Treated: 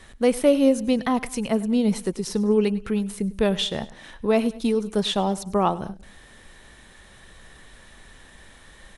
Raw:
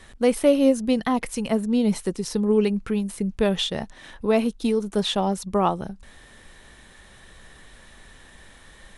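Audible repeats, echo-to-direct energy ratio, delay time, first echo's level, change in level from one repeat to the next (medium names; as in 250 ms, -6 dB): 2, -18.0 dB, 101 ms, -19.0 dB, -6.0 dB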